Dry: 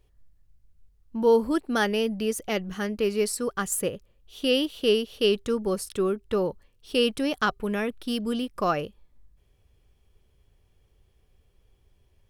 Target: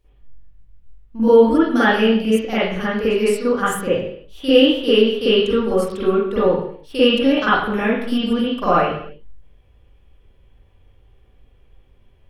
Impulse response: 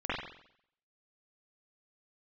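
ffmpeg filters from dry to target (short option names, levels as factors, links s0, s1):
-filter_complex "[0:a]asettb=1/sr,asplit=3[s0][s1][s2];[s0]atrim=end=6.994[s3];[s1]atrim=start=6.99:end=7.8,asetpts=PTS-STARTPTS,afade=t=in:d=0.004:c=qsin,afade=t=out:st=0.806:d=0.004:c=qsin,equalizer=f=8600:w=7.9:g=-10.5[s4];[s2]atrim=start=7.796[s5];[s3][s4]acrossfade=d=0.004:c1=hsin:c2=qsin[s6];[s6][s5]acrossfade=d=0.004:c1=qsin:c2=hsin[s7];[1:a]atrim=start_sample=2205,afade=t=out:st=0.42:d=0.01,atrim=end_sample=18963[s8];[s7][s8]afir=irnorm=-1:irlink=0,volume=1.19"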